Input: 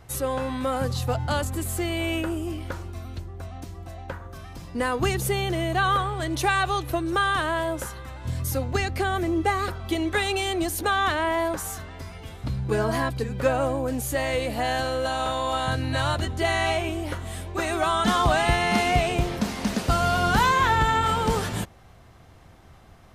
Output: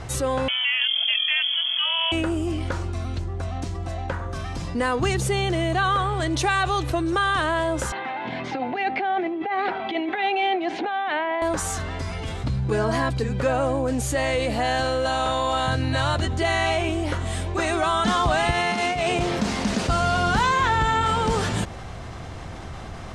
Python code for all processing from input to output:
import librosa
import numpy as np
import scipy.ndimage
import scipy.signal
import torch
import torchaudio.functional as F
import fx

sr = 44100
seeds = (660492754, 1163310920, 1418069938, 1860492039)

y = fx.chain(x, sr, fx.freq_invert(carrier_hz=3300),
    fx.brickwall_highpass(low_hz=590.0), at=(0.48, 2.12))
y = fx.chain(y, sr, fx.over_compress(threshold_db=-27.0, ratio=-0.5),
    fx.cabinet(low_hz=240.0, low_slope=24, high_hz=3200.0, hz=(310.0, 540.0, 780.0, 1200.0, 2200.0), db=(-3, -7, 9, -7, 4)), at=(7.92, 11.42))
y = fx.chain(y, sr, fx.highpass(hz=160.0, slope=6),
    fx.over_compress(threshold_db=-25.0, ratio=-0.5), at=(18.51, 19.41))
y = scipy.signal.sosfilt(scipy.signal.butter(4, 9000.0, 'lowpass', fs=sr, output='sos'), y)
y = fx.env_flatten(y, sr, amount_pct=50)
y = y * 10.0 ** (-1.5 / 20.0)